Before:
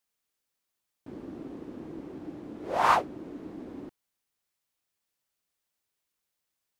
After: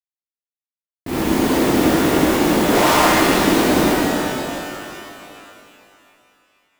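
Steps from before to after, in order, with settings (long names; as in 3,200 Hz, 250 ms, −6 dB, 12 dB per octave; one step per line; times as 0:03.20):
fuzz pedal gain 49 dB, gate −51 dBFS
noise that follows the level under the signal 15 dB
reverb with rising layers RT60 2.8 s, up +12 semitones, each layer −8 dB, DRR −9.5 dB
level −9.5 dB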